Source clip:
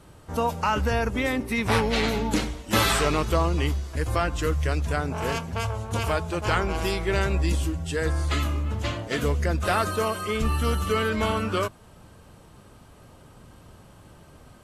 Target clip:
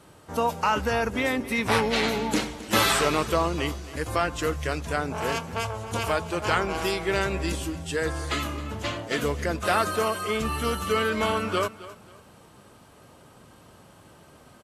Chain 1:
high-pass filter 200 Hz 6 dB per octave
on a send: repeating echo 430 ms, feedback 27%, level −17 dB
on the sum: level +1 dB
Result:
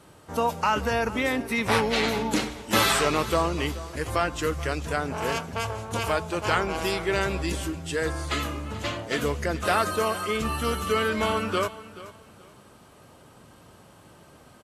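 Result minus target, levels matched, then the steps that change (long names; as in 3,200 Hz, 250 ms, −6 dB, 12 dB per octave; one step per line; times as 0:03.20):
echo 163 ms late
change: repeating echo 267 ms, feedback 27%, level −17 dB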